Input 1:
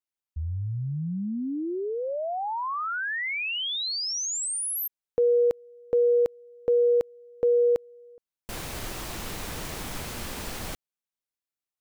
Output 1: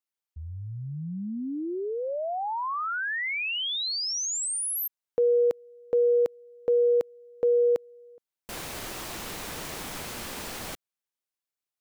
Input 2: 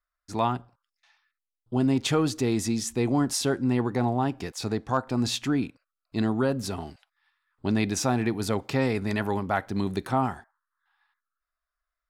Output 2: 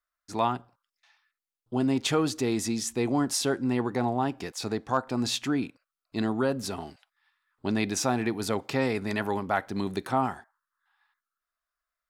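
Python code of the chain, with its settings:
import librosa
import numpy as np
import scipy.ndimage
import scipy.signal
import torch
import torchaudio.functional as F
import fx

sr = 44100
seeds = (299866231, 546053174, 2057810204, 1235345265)

y = fx.low_shelf(x, sr, hz=130.0, db=-10.5)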